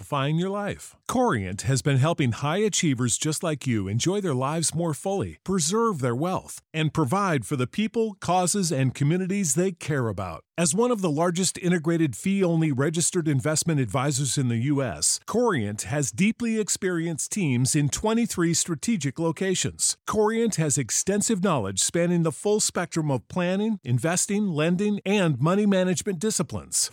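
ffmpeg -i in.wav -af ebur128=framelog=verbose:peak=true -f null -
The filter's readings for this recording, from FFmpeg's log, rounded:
Integrated loudness:
  I:         -24.3 LUFS
  Threshold: -34.3 LUFS
Loudness range:
  LRA:         1.7 LU
  Threshold: -44.3 LUFS
  LRA low:   -25.2 LUFS
  LRA high:  -23.5 LUFS
True peak:
  Peak:       -9.2 dBFS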